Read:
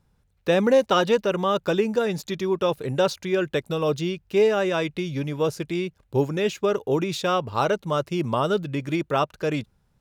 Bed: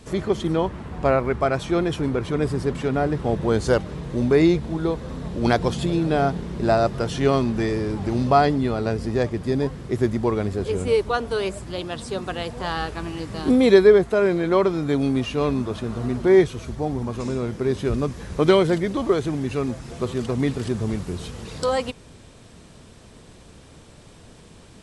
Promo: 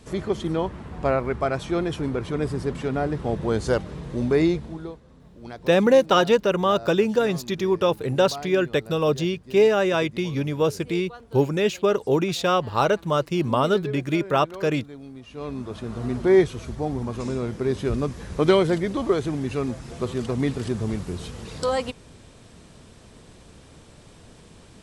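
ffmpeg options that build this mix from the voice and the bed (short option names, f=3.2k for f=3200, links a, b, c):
-filter_complex "[0:a]adelay=5200,volume=2dB[a];[1:a]volume=15dB,afade=t=out:st=4.42:d=0.59:silence=0.149624,afade=t=in:st=15.22:d=0.94:silence=0.125893[b];[a][b]amix=inputs=2:normalize=0"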